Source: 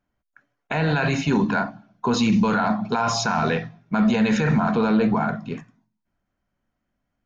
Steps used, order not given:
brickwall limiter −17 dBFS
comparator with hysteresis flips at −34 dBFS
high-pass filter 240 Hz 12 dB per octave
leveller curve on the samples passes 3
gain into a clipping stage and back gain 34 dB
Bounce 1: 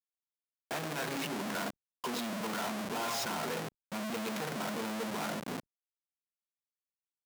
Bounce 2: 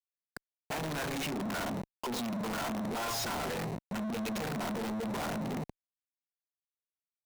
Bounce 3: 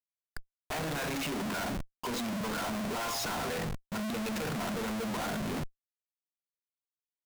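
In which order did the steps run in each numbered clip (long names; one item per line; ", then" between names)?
brickwall limiter, then comparator with hysteresis, then leveller curve on the samples, then gain into a clipping stage and back, then high-pass filter
brickwall limiter, then leveller curve on the samples, then comparator with hysteresis, then high-pass filter, then gain into a clipping stage and back
brickwall limiter, then leveller curve on the samples, then high-pass filter, then comparator with hysteresis, then gain into a clipping stage and back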